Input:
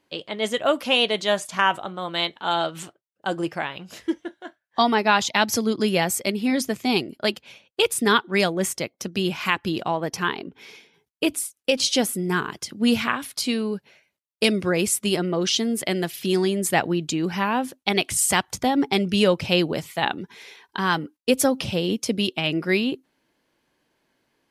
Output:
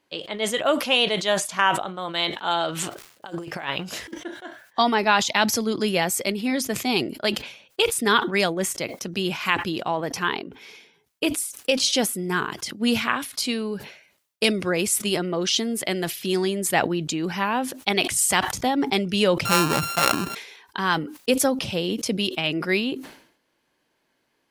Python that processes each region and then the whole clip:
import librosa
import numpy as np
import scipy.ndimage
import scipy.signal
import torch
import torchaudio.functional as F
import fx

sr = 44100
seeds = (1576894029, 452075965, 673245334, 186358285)

y = fx.over_compress(x, sr, threshold_db=-32.0, ratio=-0.5, at=(2.72, 4.18), fade=0.02)
y = fx.dmg_crackle(y, sr, seeds[0], per_s=600.0, level_db=-54.0, at=(2.72, 4.18), fade=0.02)
y = fx.chain(y, sr, fx.sample_sort(block=32),
    fx.peak_eq(hz=130.0, db=4.0, octaves=1.8),
    fx.env_flatten(amount_pct=50), at=(19.45, 20.35))
y = fx.low_shelf(y, sr, hz=320.0, db=-4.5)
y = fx.sustainer(y, sr, db_per_s=94.0)